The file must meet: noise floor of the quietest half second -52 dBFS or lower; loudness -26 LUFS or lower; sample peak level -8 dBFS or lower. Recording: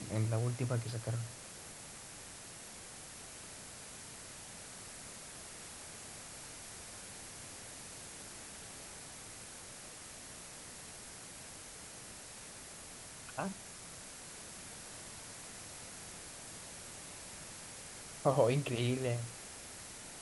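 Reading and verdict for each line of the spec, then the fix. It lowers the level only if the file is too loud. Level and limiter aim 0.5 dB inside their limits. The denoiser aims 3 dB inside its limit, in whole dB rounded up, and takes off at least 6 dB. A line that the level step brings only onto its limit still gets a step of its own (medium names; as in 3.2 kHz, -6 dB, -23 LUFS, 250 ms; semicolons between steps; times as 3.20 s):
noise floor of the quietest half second -51 dBFS: fail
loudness -42.5 LUFS: pass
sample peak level -16.0 dBFS: pass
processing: noise reduction 6 dB, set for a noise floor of -51 dBFS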